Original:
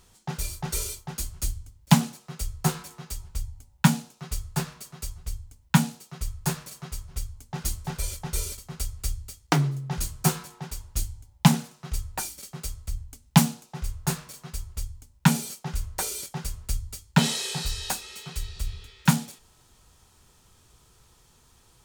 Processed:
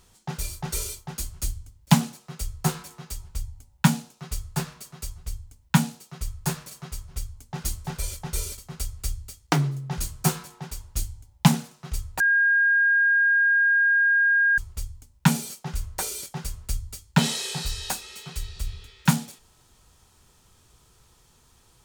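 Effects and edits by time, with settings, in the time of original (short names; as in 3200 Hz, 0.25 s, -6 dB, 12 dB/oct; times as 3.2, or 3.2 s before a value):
12.2–14.58 bleep 1620 Hz -16.5 dBFS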